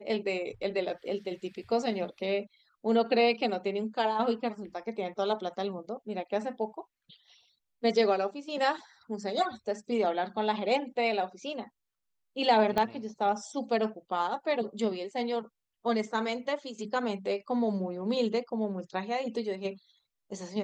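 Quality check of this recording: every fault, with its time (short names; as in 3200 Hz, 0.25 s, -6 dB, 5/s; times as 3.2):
12.78 pop -14 dBFS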